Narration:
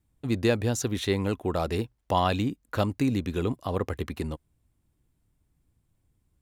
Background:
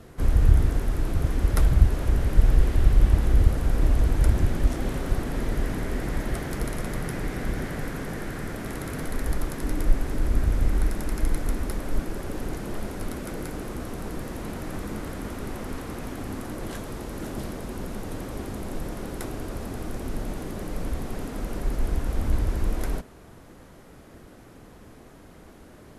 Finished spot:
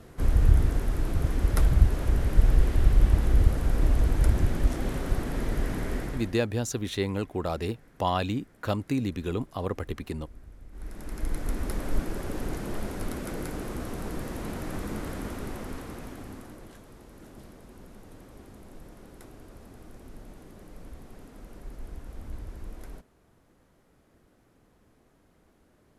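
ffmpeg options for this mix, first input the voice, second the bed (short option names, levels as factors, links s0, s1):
-filter_complex "[0:a]adelay=5900,volume=0.75[s0];[1:a]volume=13.3,afade=t=out:st=5.95:d=0.43:silence=0.0668344,afade=t=in:st=10.71:d=1.1:silence=0.0595662,afade=t=out:st=15.17:d=1.56:silence=0.199526[s1];[s0][s1]amix=inputs=2:normalize=0"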